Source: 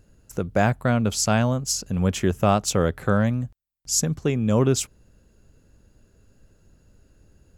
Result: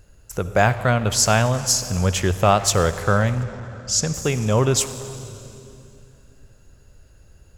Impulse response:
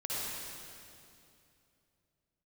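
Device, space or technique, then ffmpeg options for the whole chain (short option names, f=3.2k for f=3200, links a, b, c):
saturated reverb return: -filter_complex "[0:a]asplit=2[a][b];[1:a]atrim=start_sample=2205[c];[b][c]afir=irnorm=-1:irlink=0,asoftclip=type=tanh:threshold=-17dB,volume=-12dB[d];[a][d]amix=inputs=2:normalize=0,asettb=1/sr,asplit=3[e][f][g];[e]atrim=end=3.434[h];[f]atrim=start=3.43:end=4.14,asetpts=PTS-STARTPTS,afade=t=in:d=0.004:c=qsin,afade=t=out:st=0.706:d=0.004:c=qsin,lowpass=5.7k[i];[g]atrim=start=4.136[j];[h][i]acrossfade=d=0.004:c1=hsin:c2=qsin[k];[k][j]acrossfade=d=0.004:c1=qsin:c2=hsin,equalizer=f=240:t=o:w=1.6:g=-10,volume=5.5dB"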